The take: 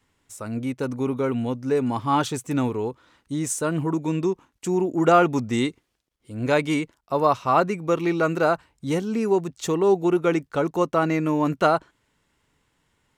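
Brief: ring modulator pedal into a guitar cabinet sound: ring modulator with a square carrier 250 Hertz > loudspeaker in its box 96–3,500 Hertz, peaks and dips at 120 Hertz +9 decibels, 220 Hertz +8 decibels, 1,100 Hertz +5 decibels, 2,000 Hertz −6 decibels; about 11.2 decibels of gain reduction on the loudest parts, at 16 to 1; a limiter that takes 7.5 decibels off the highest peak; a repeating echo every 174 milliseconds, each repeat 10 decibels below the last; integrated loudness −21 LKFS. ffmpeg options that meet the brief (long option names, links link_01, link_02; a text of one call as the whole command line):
ffmpeg -i in.wav -af "acompressor=threshold=-24dB:ratio=16,alimiter=limit=-22.5dB:level=0:latency=1,aecho=1:1:174|348|522|696:0.316|0.101|0.0324|0.0104,aeval=exprs='val(0)*sgn(sin(2*PI*250*n/s))':channel_layout=same,highpass=96,equalizer=frequency=120:width_type=q:width=4:gain=9,equalizer=frequency=220:width_type=q:width=4:gain=8,equalizer=frequency=1100:width_type=q:width=4:gain=5,equalizer=frequency=2000:width_type=q:width=4:gain=-6,lowpass=frequency=3500:width=0.5412,lowpass=frequency=3500:width=1.3066,volume=9.5dB" out.wav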